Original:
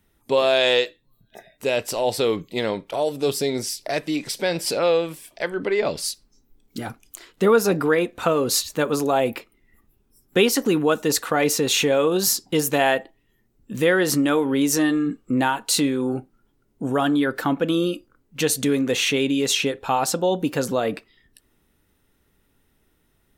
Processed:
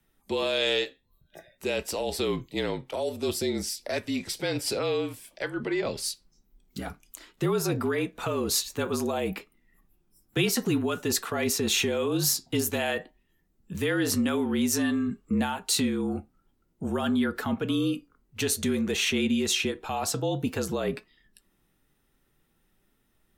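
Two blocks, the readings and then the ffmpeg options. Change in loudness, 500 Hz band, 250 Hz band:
−6.5 dB, −8.5 dB, −5.0 dB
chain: -filter_complex "[0:a]afreqshift=-42,flanger=delay=4.1:depth=3.6:regen=79:speed=0.52:shape=triangular,acrossover=split=230|2300[link_01][link_02][link_03];[link_02]alimiter=limit=-22.5dB:level=0:latency=1:release=31[link_04];[link_01][link_04][link_03]amix=inputs=3:normalize=0"

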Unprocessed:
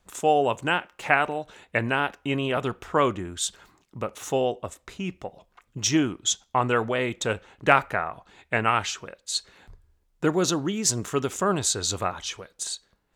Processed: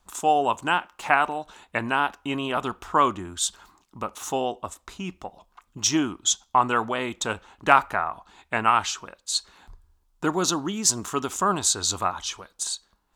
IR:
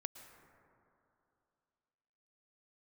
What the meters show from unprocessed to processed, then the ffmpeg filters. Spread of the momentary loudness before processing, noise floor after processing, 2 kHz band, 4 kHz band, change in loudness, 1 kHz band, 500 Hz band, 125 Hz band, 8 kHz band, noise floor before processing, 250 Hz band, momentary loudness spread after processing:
12 LU, −68 dBFS, −0.5 dB, +1.5 dB, +1.0 dB, +3.5 dB, −3.5 dB, −5.5 dB, +2.5 dB, −69 dBFS, −1.5 dB, 13 LU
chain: -af "equalizer=frequency=125:width_type=o:width=1:gain=-10,equalizer=frequency=500:width_type=o:width=1:gain=-9,equalizer=frequency=1000:width_type=o:width=1:gain=6,equalizer=frequency=2000:width_type=o:width=1:gain=-7,volume=3dB"

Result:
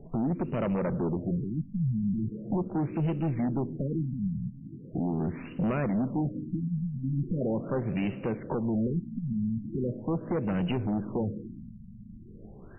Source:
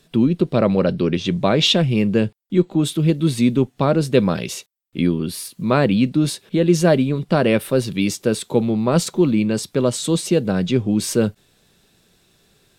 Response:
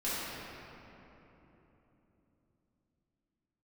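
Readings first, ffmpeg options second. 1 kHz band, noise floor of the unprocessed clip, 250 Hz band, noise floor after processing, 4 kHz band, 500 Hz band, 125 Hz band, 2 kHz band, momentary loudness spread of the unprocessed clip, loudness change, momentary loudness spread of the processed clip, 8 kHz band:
−12.5 dB, −61 dBFS, −11.0 dB, −47 dBFS, below −25 dB, −15.0 dB, −9.0 dB, −17.0 dB, 6 LU, −12.0 dB, 10 LU, below −40 dB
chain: -filter_complex "[0:a]lowshelf=frequency=73:gain=10,acompressor=threshold=-32dB:ratio=3,alimiter=limit=-24dB:level=0:latency=1:release=334,asplit=2[link_01][link_02];[1:a]atrim=start_sample=2205,adelay=35[link_03];[link_02][link_03]afir=irnorm=-1:irlink=0,volume=-22.5dB[link_04];[link_01][link_04]amix=inputs=2:normalize=0,aeval=exprs='0.0794*(cos(1*acos(clip(val(0)/0.0794,-1,1)))-cos(1*PI/2))+0.02*(cos(5*acos(clip(val(0)/0.0794,-1,1)))-cos(5*PI/2))+0.00398*(cos(6*acos(clip(val(0)/0.0794,-1,1)))-cos(6*PI/2))+0.000562*(cos(8*acos(clip(val(0)/0.0794,-1,1)))-cos(8*PI/2))':channel_layout=same,afftfilt=real='re*lt(b*sr/1024,230*pow(3100/230,0.5+0.5*sin(2*PI*0.4*pts/sr)))':imag='im*lt(b*sr/1024,230*pow(3100/230,0.5+0.5*sin(2*PI*0.4*pts/sr)))':win_size=1024:overlap=0.75,volume=2dB"

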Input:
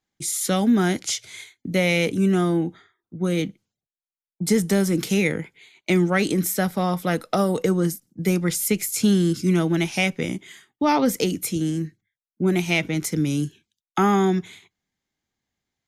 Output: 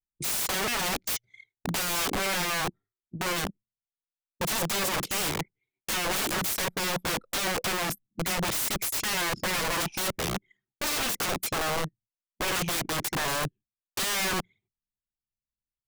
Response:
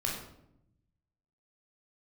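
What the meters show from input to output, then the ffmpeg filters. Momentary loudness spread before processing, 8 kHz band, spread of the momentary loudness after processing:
10 LU, −1.0 dB, 7 LU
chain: -af "anlmdn=39.8,aeval=exprs='(mod(15*val(0)+1,2)-1)/15':channel_layout=same"

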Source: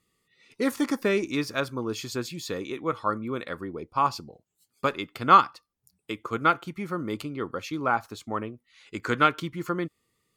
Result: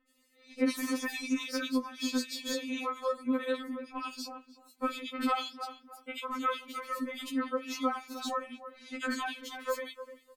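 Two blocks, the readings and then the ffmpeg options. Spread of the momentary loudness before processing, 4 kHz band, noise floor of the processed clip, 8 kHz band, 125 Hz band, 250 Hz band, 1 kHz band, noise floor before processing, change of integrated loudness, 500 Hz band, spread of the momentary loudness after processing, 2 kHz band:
12 LU, −1.5 dB, −67 dBFS, can't be measured, below −25 dB, −3.0 dB, −11.0 dB, −78 dBFS, −7.5 dB, −6.5 dB, 11 LU, −6.5 dB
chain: -filter_complex "[0:a]asplit=2[link_01][link_02];[link_02]adelay=300,lowpass=frequency=1700:poles=1,volume=-18.5dB,asplit=2[link_03][link_04];[link_04]adelay=300,lowpass=frequency=1700:poles=1,volume=0.16[link_05];[link_03][link_05]amix=inputs=2:normalize=0[link_06];[link_01][link_06]amix=inputs=2:normalize=0,acrossover=split=1200|3200[link_07][link_08][link_09];[link_07]acompressor=threshold=-38dB:ratio=4[link_10];[link_08]acompressor=threshold=-41dB:ratio=4[link_11];[link_09]acompressor=threshold=-45dB:ratio=4[link_12];[link_10][link_11][link_12]amix=inputs=3:normalize=0,acrossover=split=2300[link_13][link_14];[link_14]adelay=80[link_15];[link_13][link_15]amix=inputs=2:normalize=0,afftfilt=real='re*3.46*eq(mod(b,12),0)':imag='im*3.46*eq(mod(b,12),0)':win_size=2048:overlap=0.75,volume=7.5dB"

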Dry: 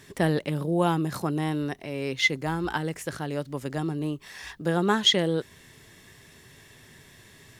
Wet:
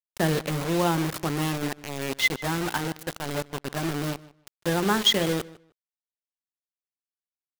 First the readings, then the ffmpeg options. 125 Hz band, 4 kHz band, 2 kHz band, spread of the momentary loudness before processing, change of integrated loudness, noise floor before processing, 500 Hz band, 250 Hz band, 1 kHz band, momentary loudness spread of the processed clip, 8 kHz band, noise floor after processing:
−0.5 dB, +0.5 dB, +1.0 dB, 12 LU, +0.5 dB, −53 dBFS, −0.5 dB, −0.5 dB, +1.0 dB, 12 LU, +4.5 dB, below −85 dBFS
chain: -filter_complex "[0:a]bandreject=frequency=60:width_type=h:width=6,bandreject=frequency=120:width_type=h:width=6,bandreject=frequency=180:width_type=h:width=6,bandreject=frequency=240:width_type=h:width=6,bandreject=frequency=300:width_type=h:width=6,bandreject=frequency=360:width_type=h:width=6,bandreject=frequency=420:width_type=h:width=6,bandreject=frequency=480:width_type=h:width=6,bandreject=frequency=540:width_type=h:width=6,acrusher=bits=4:mix=0:aa=0.000001,asplit=2[link_01][link_02];[link_02]adelay=153,lowpass=frequency=4600:poles=1,volume=-19.5dB,asplit=2[link_03][link_04];[link_04]adelay=153,lowpass=frequency=4600:poles=1,volume=0.19[link_05];[link_01][link_03][link_05]amix=inputs=3:normalize=0"

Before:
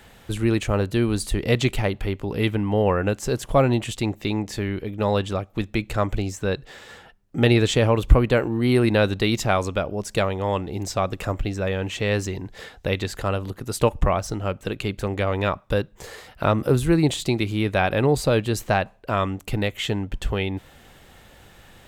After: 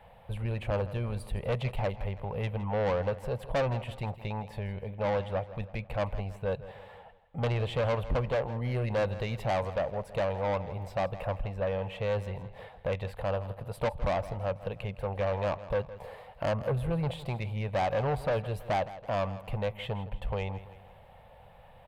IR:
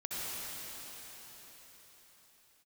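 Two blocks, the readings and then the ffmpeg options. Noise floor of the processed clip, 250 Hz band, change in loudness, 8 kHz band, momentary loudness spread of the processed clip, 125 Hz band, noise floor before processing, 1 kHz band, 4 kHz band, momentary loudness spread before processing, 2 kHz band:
−54 dBFS, −15.5 dB, −9.5 dB, below −20 dB, 8 LU, −8.5 dB, −51 dBFS, −7.0 dB, −14.5 dB, 9 LU, −11.5 dB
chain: -af "firequalizer=gain_entry='entry(160,0);entry(320,-19);entry(510,6);entry(930,6);entry(1400,-8);entry(2400,-4);entry(6500,-27);entry(9700,-13)':delay=0.05:min_phase=1,asoftclip=type=tanh:threshold=-19dB,aecho=1:1:163|326|489|652:0.168|0.0772|0.0355|0.0163,volume=-5.5dB"

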